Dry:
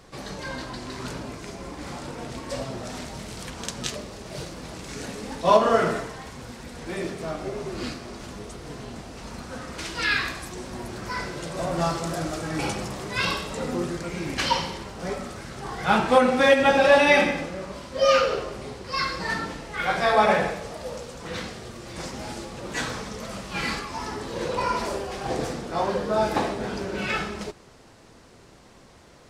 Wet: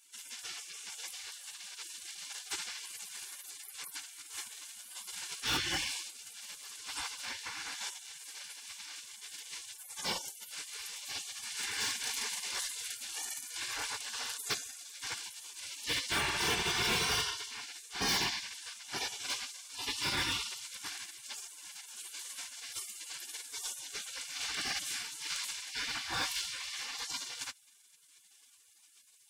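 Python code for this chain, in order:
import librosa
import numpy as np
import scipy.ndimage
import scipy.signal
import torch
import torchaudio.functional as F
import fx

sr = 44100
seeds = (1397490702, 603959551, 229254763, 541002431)

y = fx.spec_gate(x, sr, threshold_db=-25, keep='weak')
y = np.clip(y, -10.0 ** (-34.0 / 20.0), 10.0 ** (-34.0 / 20.0))
y = fx.notch_comb(y, sr, f0_hz=640.0)
y = y * 10.0 ** (7.0 / 20.0)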